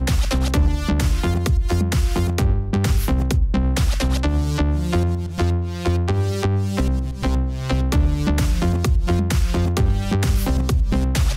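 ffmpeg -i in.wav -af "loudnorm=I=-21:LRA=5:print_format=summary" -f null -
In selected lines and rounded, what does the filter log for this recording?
Input Integrated:    -20.6 LUFS
Input True Peak:      -8.0 dBTP
Input LRA:             0.9 LU
Input Threshold:     -30.6 LUFS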